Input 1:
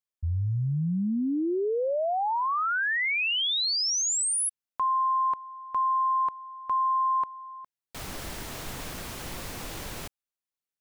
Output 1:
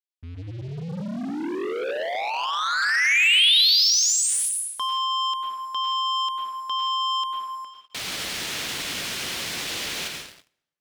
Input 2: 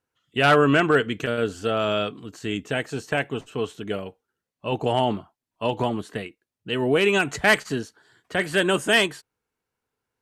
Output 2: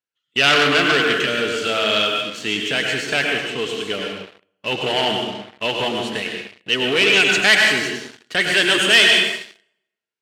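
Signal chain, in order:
dense smooth reverb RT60 0.92 s, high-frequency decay 0.85×, pre-delay 85 ms, DRR 2 dB
leveller curve on the samples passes 3
meter weighting curve D
level −9.5 dB

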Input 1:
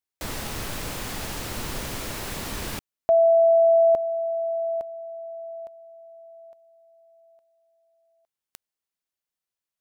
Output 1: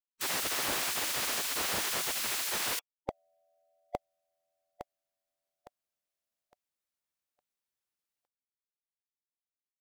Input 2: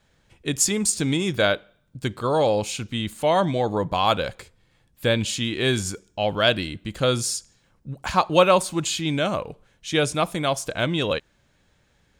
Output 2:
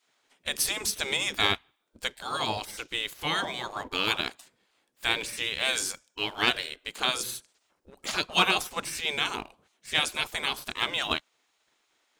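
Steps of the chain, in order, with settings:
gate on every frequency bin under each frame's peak −15 dB weak
leveller curve on the samples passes 1

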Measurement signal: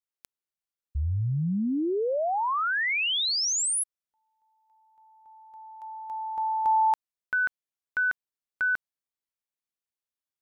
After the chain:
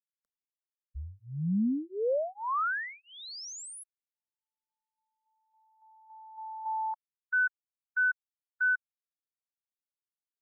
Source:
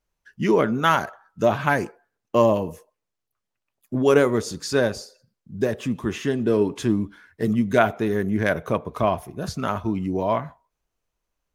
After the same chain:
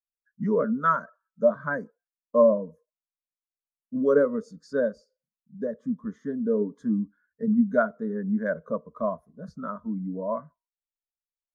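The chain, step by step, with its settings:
high-shelf EQ 6,100 Hz −9 dB
phaser with its sweep stopped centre 530 Hz, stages 8
every bin expanded away from the loudest bin 1.5 to 1

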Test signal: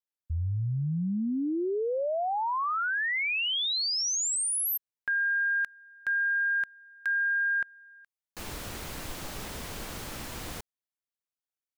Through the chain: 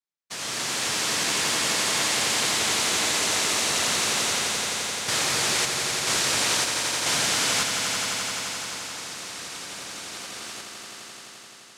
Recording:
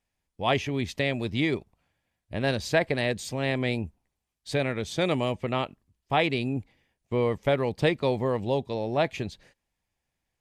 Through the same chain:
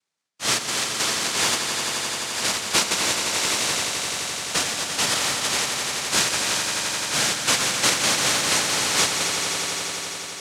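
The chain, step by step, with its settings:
cochlear-implant simulation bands 1
echo that builds up and dies away 86 ms, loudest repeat 5, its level −9 dB
level +1.5 dB

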